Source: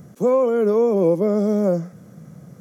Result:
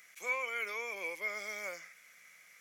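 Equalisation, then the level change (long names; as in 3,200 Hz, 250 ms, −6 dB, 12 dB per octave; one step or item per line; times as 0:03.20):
high-pass with resonance 2,200 Hz, resonance Q 7.4
−2.0 dB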